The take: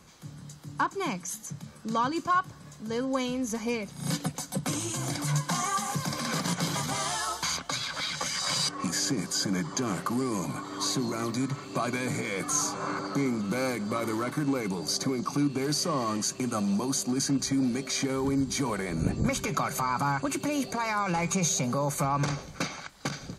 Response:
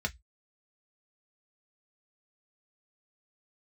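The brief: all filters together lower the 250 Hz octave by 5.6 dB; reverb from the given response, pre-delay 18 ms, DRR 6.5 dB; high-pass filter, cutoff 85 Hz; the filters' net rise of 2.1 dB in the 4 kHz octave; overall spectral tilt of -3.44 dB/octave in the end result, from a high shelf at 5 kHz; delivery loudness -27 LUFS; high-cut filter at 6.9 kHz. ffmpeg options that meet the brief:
-filter_complex "[0:a]highpass=85,lowpass=6900,equalizer=f=250:t=o:g=-7,equalizer=f=4000:t=o:g=7,highshelf=f=5000:g=-7.5,asplit=2[s0][s1];[1:a]atrim=start_sample=2205,adelay=18[s2];[s1][s2]afir=irnorm=-1:irlink=0,volume=0.266[s3];[s0][s3]amix=inputs=2:normalize=0,volume=1.5"

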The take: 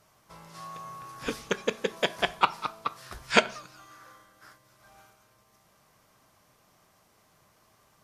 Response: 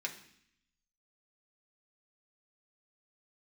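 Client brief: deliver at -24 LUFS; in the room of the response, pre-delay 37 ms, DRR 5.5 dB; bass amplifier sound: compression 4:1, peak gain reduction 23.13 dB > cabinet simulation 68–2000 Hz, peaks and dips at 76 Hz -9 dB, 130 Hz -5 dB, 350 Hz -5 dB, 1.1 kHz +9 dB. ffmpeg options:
-filter_complex "[0:a]asplit=2[s0][s1];[1:a]atrim=start_sample=2205,adelay=37[s2];[s1][s2]afir=irnorm=-1:irlink=0,volume=0.447[s3];[s0][s3]amix=inputs=2:normalize=0,acompressor=threshold=0.00794:ratio=4,highpass=f=68:w=0.5412,highpass=f=68:w=1.3066,equalizer=f=76:t=q:w=4:g=-9,equalizer=f=130:t=q:w=4:g=-5,equalizer=f=350:t=q:w=4:g=-5,equalizer=f=1100:t=q:w=4:g=9,lowpass=f=2000:w=0.5412,lowpass=f=2000:w=1.3066,volume=8.41"

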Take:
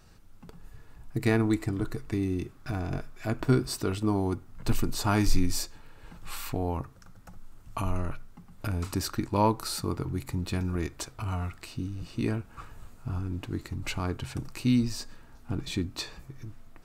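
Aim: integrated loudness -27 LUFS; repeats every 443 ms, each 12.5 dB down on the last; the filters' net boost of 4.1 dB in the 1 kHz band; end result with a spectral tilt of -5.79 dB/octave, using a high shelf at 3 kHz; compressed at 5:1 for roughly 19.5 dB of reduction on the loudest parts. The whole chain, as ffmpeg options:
-af "equalizer=f=1000:t=o:g=5.5,highshelf=f=3000:g=-6.5,acompressor=threshold=0.0126:ratio=5,aecho=1:1:443|886|1329:0.237|0.0569|0.0137,volume=6.31"

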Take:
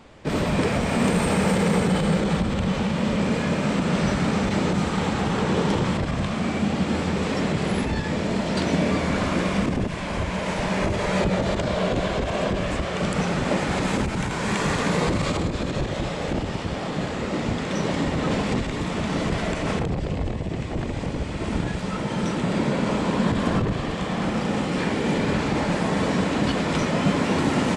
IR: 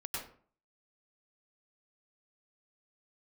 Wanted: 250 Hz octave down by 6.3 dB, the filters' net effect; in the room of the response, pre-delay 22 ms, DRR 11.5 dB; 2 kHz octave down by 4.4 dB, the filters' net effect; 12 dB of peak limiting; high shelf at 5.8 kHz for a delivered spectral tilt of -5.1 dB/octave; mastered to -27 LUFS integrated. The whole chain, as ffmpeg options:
-filter_complex "[0:a]equalizer=f=250:t=o:g=-9,equalizer=f=2000:t=o:g=-4.5,highshelf=f=5800:g=-7,alimiter=level_in=1.06:limit=0.0631:level=0:latency=1,volume=0.944,asplit=2[s0][s1];[1:a]atrim=start_sample=2205,adelay=22[s2];[s1][s2]afir=irnorm=-1:irlink=0,volume=0.224[s3];[s0][s3]amix=inputs=2:normalize=0,volume=2"

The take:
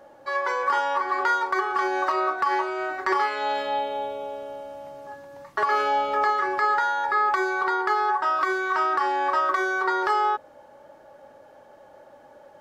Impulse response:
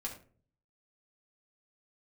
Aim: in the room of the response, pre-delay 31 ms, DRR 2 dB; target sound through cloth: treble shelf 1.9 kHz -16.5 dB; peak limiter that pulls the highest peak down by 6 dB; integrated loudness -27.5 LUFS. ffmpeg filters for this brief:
-filter_complex "[0:a]alimiter=limit=0.158:level=0:latency=1,asplit=2[s0][s1];[1:a]atrim=start_sample=2205,adelay=31[s2];[s1][s2]afir=irnorm=-1:irlink=0,volume=0.794[s3];[s0][s3]amix=inputs=2:normalize=0,highshelf=f=1900:g=-16.5,volume=0.841"

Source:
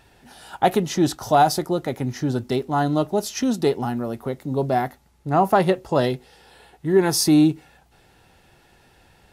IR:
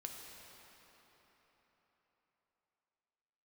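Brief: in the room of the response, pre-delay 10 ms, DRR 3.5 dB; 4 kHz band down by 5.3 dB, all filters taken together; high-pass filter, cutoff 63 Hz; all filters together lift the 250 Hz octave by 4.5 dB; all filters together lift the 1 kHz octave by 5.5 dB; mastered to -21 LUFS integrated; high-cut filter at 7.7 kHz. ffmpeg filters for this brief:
-filter_complex "[0:a]highpass=63,lowpass=7700,equalizer=f=250:t=o:g=5.5,equalizer=f=1000:t=o:g=8,equalizer=f=4000:t=o:g=-7,asplit=2[s0][s1];[1:a]atrim=start_sample=2205,adelay=10[s2];[s1][s2]afir=irnorm=-1:irlink=0,volume=0.891[s3];[s0][s3]amix=inputs=2:normalize=0,volume=0.562"

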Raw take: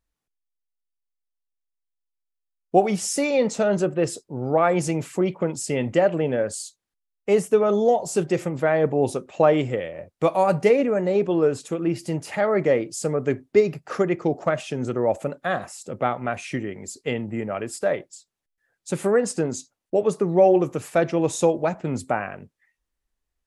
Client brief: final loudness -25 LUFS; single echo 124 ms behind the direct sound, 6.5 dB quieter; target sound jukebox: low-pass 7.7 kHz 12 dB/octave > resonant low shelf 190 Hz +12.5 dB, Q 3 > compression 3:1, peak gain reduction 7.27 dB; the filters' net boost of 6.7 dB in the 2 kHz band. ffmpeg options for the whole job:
-af "lowpass=7700,lowshelf=f=190:t=q:w=3:g=12.5,equalizer=f=2000:t=o:g=8.5,aecho=1:1:124:0.473,acompressor=threshold=0.141:ratio=3,volume=0.668"

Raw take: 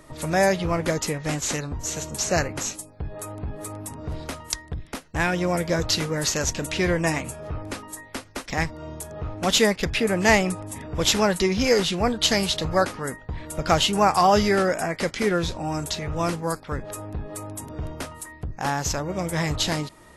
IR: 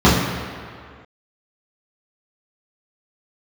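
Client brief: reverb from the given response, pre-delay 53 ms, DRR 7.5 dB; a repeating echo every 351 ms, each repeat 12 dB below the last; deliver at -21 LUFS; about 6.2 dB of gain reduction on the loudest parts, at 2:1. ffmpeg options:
-filter_complex "[0:a]acompressor=threshold=0.0562:ratio=2,aecho=1:1:351|702|1053:0.251|0.0628|0.0157,asplit=2[s0][s1];[1:a]atrim=start_sample=2205,adelay=53[s2];[s1][s2]afir=irnorm=-1:irlink=0,volume=0.0188[s3];[s0][s3]amix=inputs=2:normalize=0,volume=1.58"

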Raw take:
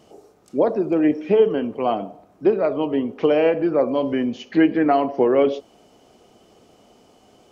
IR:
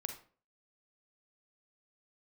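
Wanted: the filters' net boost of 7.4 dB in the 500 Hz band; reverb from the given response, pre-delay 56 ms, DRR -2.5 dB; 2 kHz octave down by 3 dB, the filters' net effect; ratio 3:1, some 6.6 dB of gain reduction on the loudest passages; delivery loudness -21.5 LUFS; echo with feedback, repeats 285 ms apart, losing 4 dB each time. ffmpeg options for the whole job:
-filter_complex "[0:a]equalizer=f=500:t=o:g=9,equalizer=f=2000:t=o:g=-4.5,acompressor=threshold=0.282:ratio=3,aecho=1:1:285|570|855|1140|1425|1710|1995|2280|2565:0.631|0.398|0.25|0.158|0.0994|0.0626|0.0394|0.0249|0.0157,asplit=2[s0][s1];[1:a]atrim=start_sample=2205,adelay=56[s2];[s1][s2]afir=irnorm=-1:irlink=0,volume=1.5[s3];[s0][s3]amix=inputs=2:normalize=0,volume=0.316"

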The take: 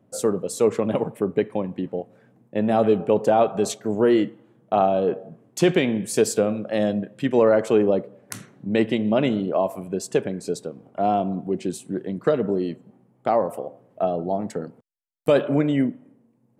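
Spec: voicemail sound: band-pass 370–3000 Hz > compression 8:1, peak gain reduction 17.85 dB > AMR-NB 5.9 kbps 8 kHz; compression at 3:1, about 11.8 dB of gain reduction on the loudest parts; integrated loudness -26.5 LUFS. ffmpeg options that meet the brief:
-af "acompressor=threshold=0.0316:ratio=3,highpass=370,lowpass=3000,acompressor=threshold=0.00631:ratio=8,volume=15.8" -ar 8000 -c:a libopencore_amrnb -b:a 5900

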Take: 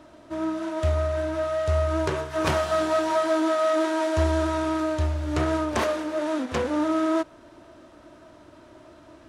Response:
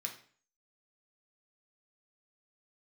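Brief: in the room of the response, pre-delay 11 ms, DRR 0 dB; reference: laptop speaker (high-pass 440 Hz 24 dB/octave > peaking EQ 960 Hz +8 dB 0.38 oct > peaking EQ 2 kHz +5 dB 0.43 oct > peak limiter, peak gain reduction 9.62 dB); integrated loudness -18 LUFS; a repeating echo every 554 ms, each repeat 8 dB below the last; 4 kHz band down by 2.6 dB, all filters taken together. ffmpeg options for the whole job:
-filter_complex "[0:a]equalizer=f=4000:t=o:g=-4,aecho=1:1:554|1108|1662|2216|2770:0.398|0.159|0.0637|0.0255|0.0102,asplit=2[s0][s1];[1:a]atrim=start_sample=2205,adelay=11[s2];[s1][s2]afir=irnorm=-1:irlink=0,volume=1.12[s3];[s0][s3]amix=inputs=2:normalize=0,highpass=f=440:w=0.5412,highpass=f=440:w=1.3066,equalizer=f=960:t=o:w=0.38:g=8,equalizer=f=2000:t=o:w=0.43:g=5,volume=2.24,alimiter=limit=0.355:level=0:latency=1"

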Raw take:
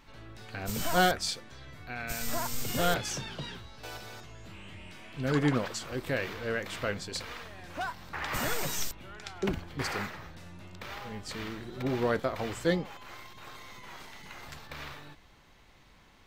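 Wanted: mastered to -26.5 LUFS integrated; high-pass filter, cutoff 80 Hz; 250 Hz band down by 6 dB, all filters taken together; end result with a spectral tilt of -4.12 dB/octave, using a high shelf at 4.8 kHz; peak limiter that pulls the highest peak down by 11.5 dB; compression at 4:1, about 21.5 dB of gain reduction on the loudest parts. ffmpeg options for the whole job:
-af "highpass=80,equalizer=f=250:t=o:g=-8.5,highshelf=f=4800:g=-5.5,acompressor=threshold=0.00398:ratio=4,volume=17.8,alimiter=limit=0.15:level=0:latency=1"

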